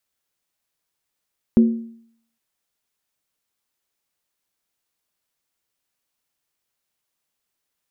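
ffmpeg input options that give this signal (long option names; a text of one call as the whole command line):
ffmpeg -f lavfi -i "aevalsrc='0.447*pow(10,-3*t/0.63)*sin(2*PI*229*t)+0.119*pow(10,-3*t/0.499)*sin(2*PI*365*t)+0.0316*pow(10,-3*t/0.431)*sin(2*PI*489.1*t)+0.00841*pow(10,-3*t/0.416)*sin(2*PI*525.8*t)+0.00224*pow(10,-3*t/0.387)*sin(2*PI*607.5*t)':duration=0.81:sample_rate=44100" out.wav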